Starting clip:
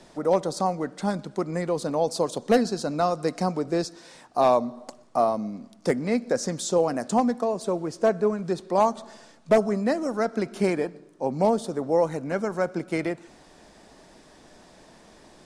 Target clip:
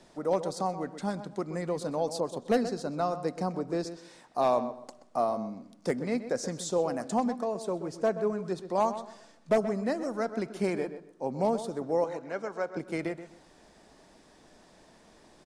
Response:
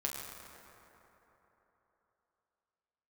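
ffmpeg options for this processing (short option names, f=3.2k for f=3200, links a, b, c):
-filter_complex "[0:a]asettb=1/sr,asplit=3[a][b][c];[a]atrim=end=12.044[d];[b]atrim=start=12.04:end=12.77,asetpts=PTS-STARTPTS,afade=t=in:d=0.004:c=qsin,afade=t=out:st=0.726:d=0.004:c=qsin,acrossover=split=330 7500:gain=0.251 1 0.0708[e][f][g];[e][f][g]amix=inputs=3:normalize=0[h];[c]atrim=start=12.766[i];[d][h]acrossfade=d=0.004:c1=hsin:c2=qsin[j];[j][i]acrossfade=d=0.004:c1=qsin:c2=hsin,asplit=2[k][l];[l]adelay=128,lowpass=f=2.7k:p=1,volume=-11.5dB,asplit=2[m][n];[n]adelay=128,lowpass=f=2.7k:p=1,volume=0.24,asplit=2[o][p];[p]adelay=128,lowpass=f=2.7k:p=1,volume=0.24[q];[m][o][q]amix=inputs=3:normalize=0[r];[k][r]amix=inputs=2:normalize=0,asettb=1/sr,asplit=3[s][t][u];[s]atrim=end=2.204[v];[t]atrim=start=2.2:end=3.87,asetpts=PTS-STARTPTS,afade=t=in:d=0.004:c=qsin,afade=t=out:st=1.666:d=0.004:c=qsin,adynamicequalizer=threshold=0.0112:dfrequency=1900:dqfactor=0.7:tfrequency=1900:tqfactor=0.7:attack=5:release=100:ratio=0.375:range=3:mode=cutabove:tftype=highshelf[w];[u]atrim=start=3.866[x];[v][w]acrossfade=d=0.004:c1=hsin:c2=qsin[y];[y][x]acrossfade=d=0.004:c1=qsin:c2=hsin,volume=-6dB"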